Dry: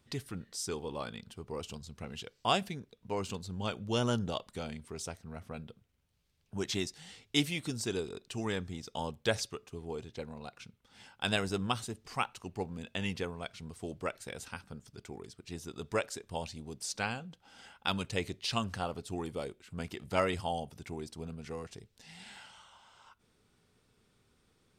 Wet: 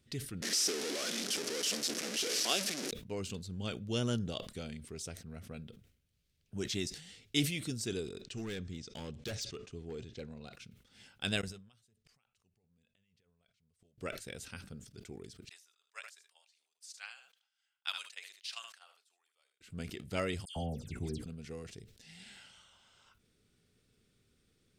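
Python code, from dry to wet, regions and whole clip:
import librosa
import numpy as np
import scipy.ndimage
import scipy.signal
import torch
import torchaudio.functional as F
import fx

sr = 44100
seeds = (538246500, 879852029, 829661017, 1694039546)

y = fx.chain(x, sr, fx.delta_mod(bps=64000, step_db=-27.0),
    fx.highpass(hz=260.0, slope=24),
    fx.peak_eq(hz=5500.0, db=8.0, octaves=0.66), at=(0.42, 2.91))
y = fx.chain(y, sr, fx.lowpass(hz=7700.0, slope=24),
    fx.clip_hard(threshold_db=-33.0), at=(8.21, 10.53))
y = fx.chain(y, sr, fx.peak_eq(hz=310.0, db=-12.0, octaves=0.48),
    fx.over_compress(threshold_db=-41.0, ratio=-1.0),
    fx.gate_flip(shuts_db=-38.0, range_db=-32), at=(11.41, 13.98))
y = fx.chain(y, sr, fx.highpass(hz=910.0, slope=24),
    fx.echo_single(ms=76, db=-14.5),
    fx.upward_expand(threshold_db=-46.0, expansion=2.5), at=(15.49, 19.61))
y = fx.chain(y, sr, fx.low_shelf(hz=220.0, db=10.5),
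    fx.hum_notches(base_hz=60, count=9),
    fx.dispersion(late='lows', ms=112.0, hz=2400.0), at=(20.45, 21.26))
y = fx.peak_eq(y, sr, hz=930.0, db=-12.5, octaves=0.98)
y = fx.sustainer(y, sr, db_per_s=94.0)
y = F.gain(torch.from_numpy(y), -1.5).numpy()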